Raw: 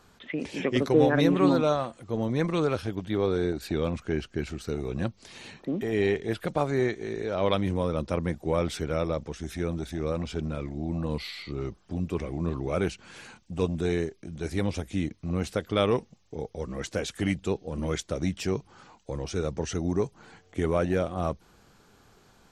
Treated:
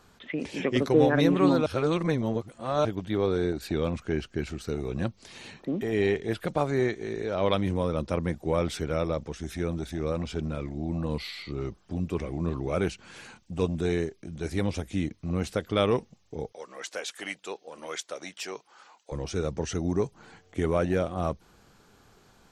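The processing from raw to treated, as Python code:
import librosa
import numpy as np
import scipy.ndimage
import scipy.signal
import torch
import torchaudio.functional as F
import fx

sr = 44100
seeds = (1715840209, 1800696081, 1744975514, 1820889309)

y = fx.highpass(x, sr, hz=660.0, slope=12, at=(16.52, 19.12))
y = fx.edit(y, sr, fx.reverse_span(start_s=1.66, length_s=1.19), tone=tone)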